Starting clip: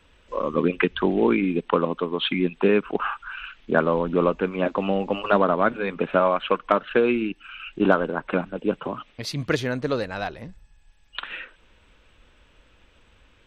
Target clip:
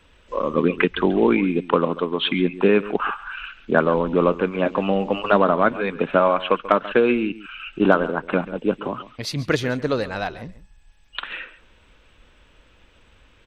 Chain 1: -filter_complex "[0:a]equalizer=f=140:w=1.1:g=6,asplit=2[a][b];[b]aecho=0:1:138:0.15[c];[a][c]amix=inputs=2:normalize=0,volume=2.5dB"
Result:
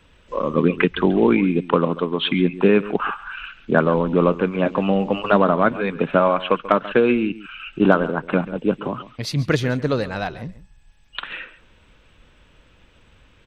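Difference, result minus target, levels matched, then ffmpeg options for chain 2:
125 Hz band +3.5 dB
-filter_complex "[0:a]asplit=2[a][b];[b]aecho=0:1:138:0.15[c];[a][c]amix=inputs=2:normalize=0,volume=2.5dB"

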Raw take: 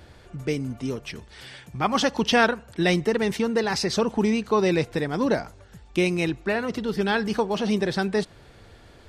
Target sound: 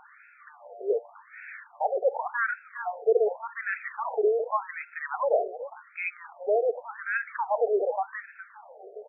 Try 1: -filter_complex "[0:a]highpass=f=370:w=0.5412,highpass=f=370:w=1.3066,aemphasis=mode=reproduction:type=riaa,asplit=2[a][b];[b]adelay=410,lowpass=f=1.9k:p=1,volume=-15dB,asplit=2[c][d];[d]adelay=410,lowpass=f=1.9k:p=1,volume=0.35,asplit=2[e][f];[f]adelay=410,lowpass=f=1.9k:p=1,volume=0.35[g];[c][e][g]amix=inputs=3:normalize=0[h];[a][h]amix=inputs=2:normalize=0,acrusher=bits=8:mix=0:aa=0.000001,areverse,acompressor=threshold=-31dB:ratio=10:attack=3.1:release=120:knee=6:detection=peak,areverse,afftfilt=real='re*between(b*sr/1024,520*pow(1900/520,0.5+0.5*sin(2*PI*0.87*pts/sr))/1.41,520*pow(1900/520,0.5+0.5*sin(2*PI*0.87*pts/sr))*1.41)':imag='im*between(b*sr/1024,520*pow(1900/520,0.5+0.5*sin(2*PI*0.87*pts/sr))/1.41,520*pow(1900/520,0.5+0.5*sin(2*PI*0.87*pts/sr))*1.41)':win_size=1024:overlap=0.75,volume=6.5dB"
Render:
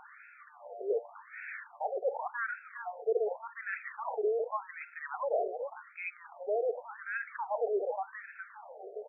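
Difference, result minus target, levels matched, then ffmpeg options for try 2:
compressor: peak gain reduction +8 dB
-filter_complex "[0:a]highpass=f=370:w=0.5412,highpass=f=370:w=1.3066,aemphasis=mode=reproduction:type=riaa,asplit=2[a][b];[b]adelay=410,lowpass=f=1.9k:p=1,volume=-15dB,asplit=2[c][d];[d]adelay=410,lowpass=f=1.9k:p=1,volume=0.35,asplit=2[e][f];[f]adelay=410,lowpass=f=1.9k:p=1,volume=0.35[g];[c][e][g]amix=inputs=3:normalize=0[h];[a][h]amix=inputs=2:normalize=0,acrusher=bits=8:mix=0:aa=0.000001,areverse,acompressor=threshold=-22dB:ratio=10:attack=3.1:release=120:knee=6:detection=peak,areverse,afftfilt=real='re*between(b*sr/1024,520*pow(1900/520,0.5+0.5*sin(2*PI*0.87*pts/sr))/1.41,520*pow(1900/520,0.5+0.5*sin(2*PI*0.87*pts/sr))*1.41)':imag='im*between(b*sr/1024,520*pow(1900/520,0.5+0.5*sin(2*PI*0.87*pts/sr))/1.41,520*pow(1900/520,0.5+0.5*sin(2*PI*0.87*pts/sr))*1.41)':win_size=1024:overlap=0.75,volume=6.5dB"

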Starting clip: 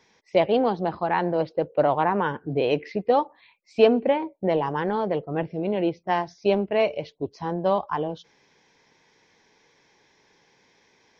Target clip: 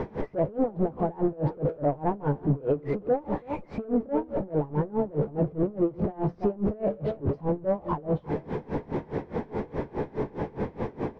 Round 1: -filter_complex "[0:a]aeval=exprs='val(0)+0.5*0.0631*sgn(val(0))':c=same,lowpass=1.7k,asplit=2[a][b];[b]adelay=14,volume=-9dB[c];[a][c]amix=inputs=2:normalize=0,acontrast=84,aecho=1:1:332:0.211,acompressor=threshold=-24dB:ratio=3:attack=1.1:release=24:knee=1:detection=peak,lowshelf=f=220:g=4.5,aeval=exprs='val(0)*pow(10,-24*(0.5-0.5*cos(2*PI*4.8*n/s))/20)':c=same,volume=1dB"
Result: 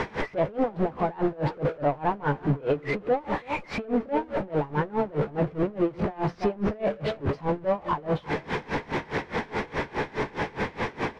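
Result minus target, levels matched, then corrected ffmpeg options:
2000 Hz band +13.0 dB
-filter_complex "[0:a]aeval=exprs='val(0)+0.5*0.0631*sgn(val(0))':c=same,lowpass=590,asplit=2[a][b];[b]adelay=14,volume=-9dB[c];[a][c]amix=inputs=2:normalize=0,acontrast=84,aecho=1:1:332:0.211,acompressor=threshold=-24dB:ratio=3:attack=1.1:release=24:knee=1:detection=peak,lowshelf=f=220:g=4.5,aeval=exprs='val(0)*pow(10,-24*(0.5-0.5*cos(2*PI*4.8*n/s))/20)':c=same,volume=1dB"

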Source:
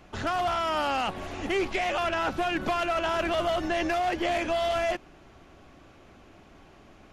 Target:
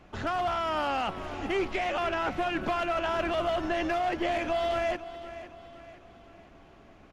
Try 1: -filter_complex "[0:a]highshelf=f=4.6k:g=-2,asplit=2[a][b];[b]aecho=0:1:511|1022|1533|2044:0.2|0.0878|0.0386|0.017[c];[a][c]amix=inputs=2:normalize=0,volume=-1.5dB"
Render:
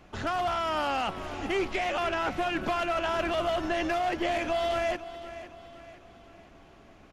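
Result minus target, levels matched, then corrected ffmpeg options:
8000 Hz band +3.5 dB
-filter_complex "[0:a]highshelf=f=4.6k:g=-8,asplit=2[a][b];[b]aecho=0:1:511|1022|1533|2044:0.2|0.0878|0.0386|0.017[c];[a][c]amix=inputs=2:normalize=0,volume=-1.5dB"

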